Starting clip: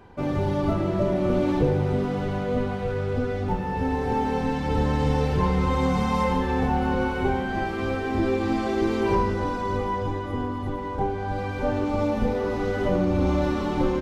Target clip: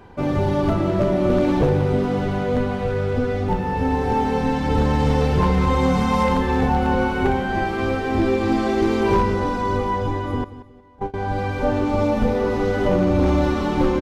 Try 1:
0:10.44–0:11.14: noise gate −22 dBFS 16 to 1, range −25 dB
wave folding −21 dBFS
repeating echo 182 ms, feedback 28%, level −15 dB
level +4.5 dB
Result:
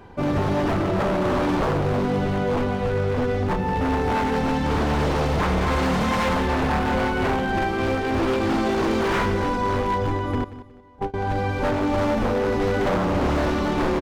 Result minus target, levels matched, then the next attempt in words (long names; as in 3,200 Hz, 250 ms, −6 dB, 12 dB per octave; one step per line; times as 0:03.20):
wave folding: distortion +20 dB
0:10.44–0:11.14: noise gate −22 dBFS 16 to 1, range −25 dB
wave folding −14.5 dBFS
repeating echo 182 ms, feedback 28%, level −15 dB
level +4.5 dB